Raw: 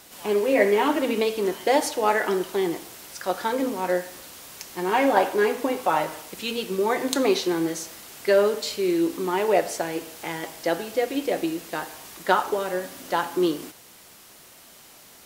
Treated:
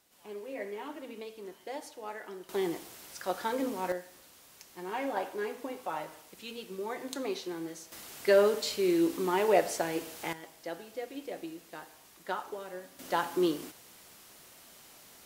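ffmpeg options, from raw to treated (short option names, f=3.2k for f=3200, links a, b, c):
-af "asetnsamples=n=441:p=0,asendcmd='2.49 volume volume -7dB;3.92 volume volume -14dB;7.92 volume volume -4dB;10.33 volume volume -15dB;12.99 volume volume -5.5dB',volume=-20dB"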